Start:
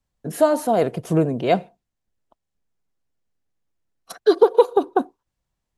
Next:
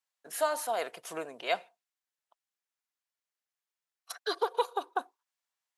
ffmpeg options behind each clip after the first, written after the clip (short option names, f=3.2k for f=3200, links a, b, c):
-af "highpass=1.1k,volume=-3dB"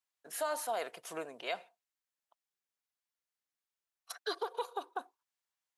-af "alimiter=limit=-22dB:level=0:latency=1:release=70,volume=-3dB"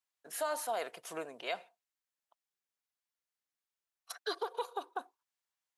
-af anull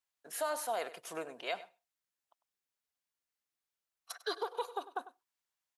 -filter_complex "[0:a]asplit=2[a][b];[b]adelay=99.13,volume=-16dB,highshelf=f=4k:g=-2.23[c];[a][c]amix=inputs=2:normalize=0"